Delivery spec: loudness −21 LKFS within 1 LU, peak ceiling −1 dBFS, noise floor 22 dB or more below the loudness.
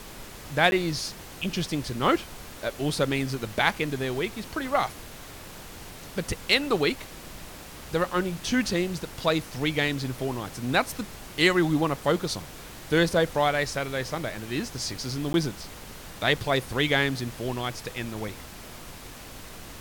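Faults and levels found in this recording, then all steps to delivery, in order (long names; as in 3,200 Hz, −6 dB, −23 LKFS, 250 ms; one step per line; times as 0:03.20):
number of dropouts 2; longest dropout 11 ms; background noise floor −43 dBFS; target noise floor −49 dBFS; integrated loudness −27.0 LKFS; sample peak −6.0 dBFS; target loudness −21.0 LKFS
→ repair the gap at 0:00.71/0:15.33, 11 ms
noise reduction from a noise print 6 dB
level +6 dB
brickwall limiter −1 dBFS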